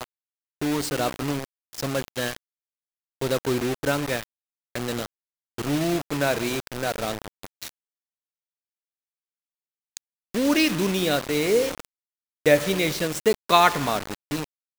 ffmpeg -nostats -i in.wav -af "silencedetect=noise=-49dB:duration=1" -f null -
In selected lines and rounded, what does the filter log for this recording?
silence_start: 7.69
silence_end: 9.97 | silence_duration: 2.28